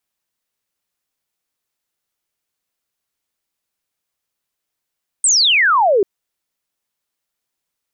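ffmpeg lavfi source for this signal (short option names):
-f lavfi -i "aevalsrc='0.316*clip(t/0.002,0,1)*clip((0.79-t)/0.002,0,1)*sin(2*PI*8800*0.79/log(370/8800)*(exp(log(370/8800)*t/0.79)-1))':d=0.79:s=44100"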